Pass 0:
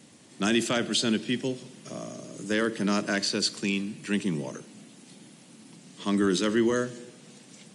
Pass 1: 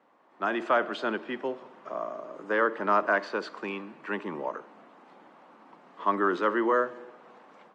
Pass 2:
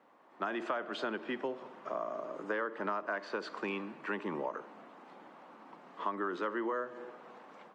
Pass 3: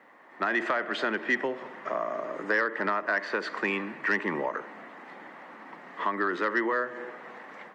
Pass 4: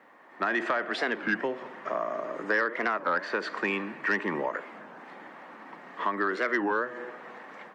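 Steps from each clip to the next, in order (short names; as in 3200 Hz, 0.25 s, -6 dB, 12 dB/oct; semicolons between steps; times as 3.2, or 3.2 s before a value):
HPF 600 Hz 12 dB/oct; AGC gain up to 8.5 dB; synth low-pass 1100 Hz, resonance Q 2.1; gain -2.5 dB
compressor 8:1, threshold -32 dBFS, peak gain reduction 13.5 dB
bell 1900 Hz +13.5 dB 0.43 oct; in parallel at -8.5 dB: sine folder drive 5 dB, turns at -17 dBFS
notch 2000 Hz, Q 21; record warp 33 1/3 rpm, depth 250 cents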